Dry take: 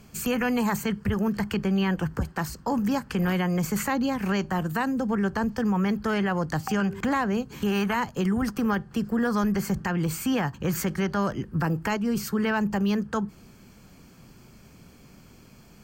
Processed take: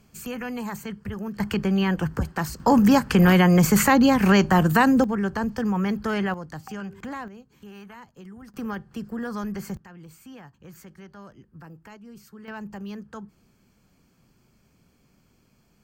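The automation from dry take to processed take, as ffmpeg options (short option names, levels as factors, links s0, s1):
-af "asetnsamples=n=441:p=0,asendcmd='1.4 volume volume 2dB;2.6 volume volume 9dB;5.04 volume volume 0dB;6.34 volume volume -9.5dB;7.28 volume volume -18.5dB;8.54 volume volume -6.5dB;9.77 volume volume -19dB;12.48 volume volume -11.5dB',volume=0.447"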